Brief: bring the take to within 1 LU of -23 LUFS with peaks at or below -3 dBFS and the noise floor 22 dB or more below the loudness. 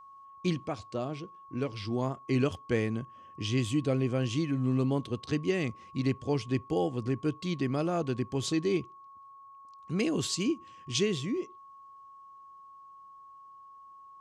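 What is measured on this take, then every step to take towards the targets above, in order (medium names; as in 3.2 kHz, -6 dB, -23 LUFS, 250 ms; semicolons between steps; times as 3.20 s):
steady tone 1.1 kHz; tone level -49 dBFS; loudness -31.5 LUFS; peak level -15.5 dBFS; loudness target -23.0 LUFS
-> band-stop 1.1 kHz, Q 30; trim +8.5 dB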